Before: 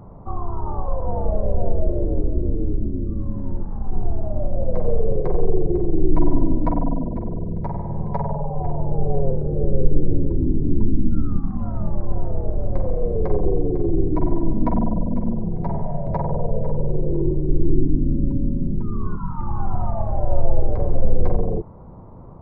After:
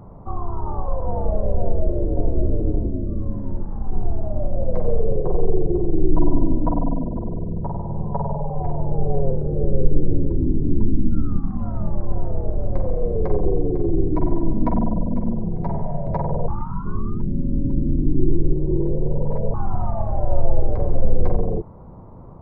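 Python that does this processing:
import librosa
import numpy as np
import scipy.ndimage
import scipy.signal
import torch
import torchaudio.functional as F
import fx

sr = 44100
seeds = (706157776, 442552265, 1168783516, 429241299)

y = fx.echo_throw(x, sr, start_s=1.59, length_s=0.72, ms=570, feedback_pct=30, wet_db=-4.5)
y = fx.lowpass(y, sr, hz=1200.0, slope=24, at=(5.03, 8.5))
y = fx.edit(y, sr, fx.reverse_span(start_s=16.48, length_s=3.06), tone=tone)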